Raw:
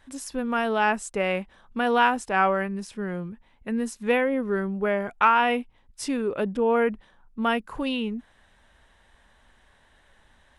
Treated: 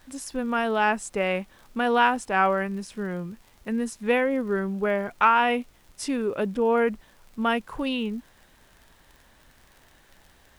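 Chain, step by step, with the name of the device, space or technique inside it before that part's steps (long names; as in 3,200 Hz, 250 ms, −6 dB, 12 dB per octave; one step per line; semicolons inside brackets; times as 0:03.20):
vinyl LP (surface crackle 62 per second −41 dBFS; pink noise bed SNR 34 dB)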